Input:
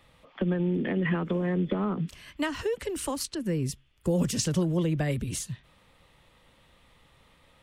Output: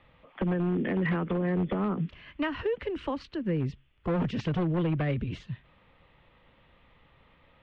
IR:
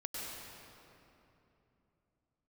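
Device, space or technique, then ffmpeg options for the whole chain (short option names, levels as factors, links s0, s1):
synthesiser wavefolder: -af "highshelf=f=10000:g=-2.5,aeval=exprs='0.0841*(abs(mod(val(0)/0.0841+3,4)-2)-1)':c=same,lowpass=f=3100:w=0.5412,lowpass=f=3100:w=1.3066"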